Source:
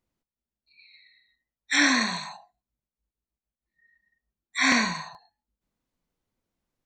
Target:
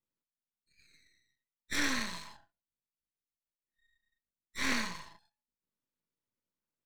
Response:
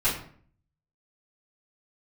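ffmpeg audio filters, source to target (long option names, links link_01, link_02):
-af "highpass=100,aeval=exprs='max(val(0),0)':channel_layout=same,asuperstop=centerf=740:order=4:qfactor=5.8,volume=-7dB"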